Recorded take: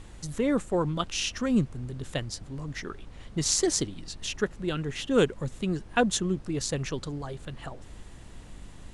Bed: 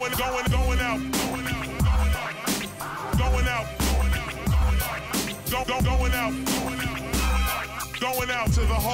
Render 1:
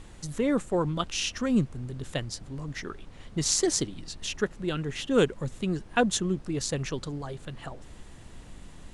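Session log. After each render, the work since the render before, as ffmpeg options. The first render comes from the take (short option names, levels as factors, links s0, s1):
-af "bandreject=f=50:t=h:w=4,bandreject=f=100:t=h:w=4"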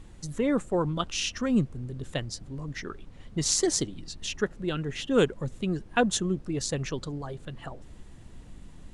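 -af "afftdn=nr=6:nf=-48"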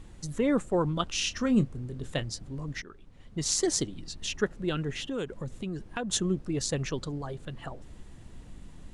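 -filter_complex "[0:a]asettb=1/sr,asplit=3[s0][s1][s2];[s0]atrim=end=1.234[s3];[s1]atrim=start=1.23:end=2.32,asetpts=PTS-STARTPTS,afade=t=in:d=0.004:c=qsin,afade=t=out:st=1.086:d=0.004:c=qsin,asplit=2[s4][s5];[s5]adelay=27,volume=0.237[s6];[s4][s6]amix=inputs=2:normalize=0,atrim=end_sample=48069[s7];[s2]atrim=start=2.316[s8];[s3][s7]acrossfade=d=0.004:c1=hsin:c2=qsin[s9];[s9][s8]acrossfade=d=0.004:c1=qsin:c2=hsin,asettb=1/sr,asplit=3[s10][s11][s12];[s10]atrim=end=4.904[s13];[s11]atrim=start=4.9:end=6.1,asetpts=PTS-STARTPTS,afade=t=in:d=0.004:c=qsin,afade=t=out:st=1.196:d=0.004:c=qsin,acompressor=threshold=0.0282:ratio=4:attack=3.2:release=140:knee=1:detection=peak[s14];[s12]atrim=start=6.096[s15];[s13][s14]acrossfade=d=0.004:c1=hsin:c2=qsin[s16];[s16][s15]acrossfade=d=0.004:c1=qsin:c2=hsin,asplit=2[s17][s18];[s17]atrim=end=2.82,asetpts=PTS-STARTPTS,afade=t=out:st=2.816:d=0.004:c=hsin:silence=0.237137[s19];[s18]atrim=start=2.82,asetpts=PTS-STARTPTS,afade=t=in:d=1.53:c=qsin:silence=0.237137[s20];[s19][s20]concat=n=2:v=0:a=1"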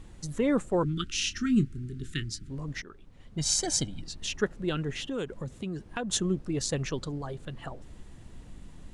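-filter_complex "[0:a]asettb=1/sr,asplit=3[s0][s1][s2];[s0]atrim=end=0.834[s3];[s1]atrim=start=0.83:end=2.5,asetpts=PTS-STARTPTS,afade=t=in:d=0.004:c=qsin,afade=t=out:st=1.666:d=0.004:c=qsin,asuperstop=centerf=720:order=12:qfactor=0.8[s4];[s2]atrim=start=2.496[s5];[s3][s4]acrossfade=d=0.004:c1=hsin:c2=qsin[s6];[s6][s5]acrossfade=d=0.004:c1=qsin:c2=hsin,asettb=1/sr,asplit=3[s7][s8][s9];[s7]atrim=end=3.384[s10];[s8]atrim=start=3.38:end=4.02,asetpts=PTS-STARTPTS,afade=t=in:d=0.004:c=qsin,afade=t=out:st=0.636:d=0.004:c=qsin,aecho=1:1:1.3:0.65,atrim=end_sample=28224[s11];[s9]atrim=start=4.016[s12];[s10][s11]acrossfade=d=0.004:c1=hsin:c2=qsin[s13];[s13][s12]acrossfade=d=0.004:c1=qsin:c2=hsin,asettb=1/sr,asplit=3[s14][s15][s16];[s14]atrim=end=5.454[s17];[s15]atrim=start=5.45:end=5.88,asetpts=PTS-STARTPTS,afade=t=in:d=0.004:c=qsin,afade=t=out:st=0.426:d=0.004:c=qsin,highpass=43[s18];[s16]atrim=start=5.876[s19];[s17][s18]acrossfade=d=0.004:c1=hsin:c2=qsin[s20];[s20][s19]acrossfade=d=0.004:c1=qsin:c2=hsin"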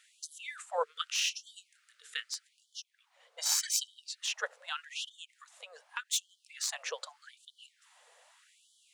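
-filter_complex "[0:a]acrossover=split=360|850|3800[s0][s1][s2][s3];[s3]aeval=exprs='clip(val(0),-1,0.0251)':c=same[s4];[s0][s1][s2][s4]amix=inputs=4:normalize=0,afftfilt=real='re*gte(b*sr/1024,430*pow(3000/430,0.5+0.5*sin(2*PI*0.83*pts/sr)))':imag='im*gte(b*sr/1024,430*pow(3000/430,0.5+0.5*sin(2*PI*0.83*pts/sr)))':win_size=1024:overlap=0.75"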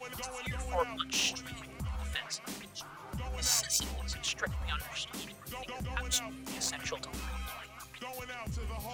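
-filter_complex "[1:a]volume=0.15[s0];[0:a][s0]amix=inputs=2:normalize=0"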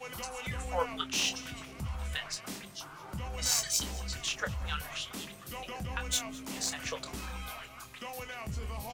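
-filter_complex "[0:a]asplit=2[s0][s1];[s1]adelay=26,volume=0.335[s2];[s0][s2]amix=inputs=2:normalize=0,asplit=5[s3][s4][s5][s6][s7];[s4]adelay=210,afreqshift=-88,volume=0.1[s8];[s5]adelay=420,afreqshift=-176,volume=0.049[s9];[s6]adelay=630,afreqshift=-264,volume=0.024[s10];[s7]adelay=840,afreqshift=-352,volume=0.0117[s11];[s3][s8][s9][s10][s11]amix=inputs=5:normalize=0"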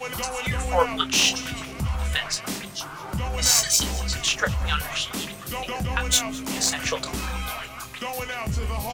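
-af "volume=3.55,alimiter=limit=0.794:level=0:latency=1"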